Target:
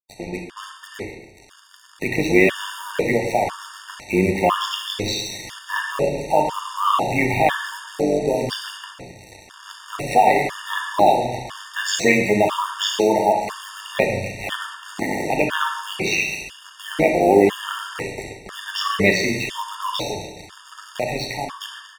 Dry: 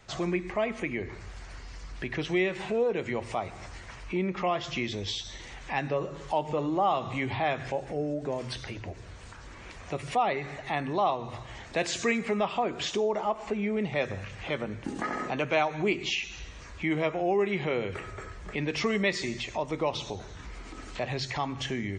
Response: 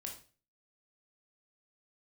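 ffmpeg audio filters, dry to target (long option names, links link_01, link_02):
-filter_complex "[0:a]lowshelf=frequency=340:gain=-2.5,acrossover=split=120[link_01][link_02];[link_02]dynaudnorm=framelen=200:gausssize=13:maxgain=13.5dB[link_03];[link_01][link_03]amix=inputs=2:normalize=0,acrusher=bits=4:mix=0:aa=0.5,tremolo=f=100:d=0.75,aecho=1:1:136|272|408|544|680:0.126|0.0718|0.0409|0.0233|0.0133,asplit=2[link_04][link_05];[1:a]atrim=start_sample=2205,asetrate=24255,aresample=44100[link_06];[link_05][link_06]afir=irnorm=-1:irlink=0,volume=4.5dB[link_07];[link_04][link_07]amix=inputs=2:normalize=0,afftfilt=real='re*gt(sin(2*PI*1*pts/sr)*(1-2*mod(floor(b*sr/1024/920),2)),0)':imag='im*gt(sin(2*PI*1*pts/sr)*(1-2*mod(floor(b*sr/1024/920),2)),0)':win_size=1024:overlap=0.75,volume=-4dB"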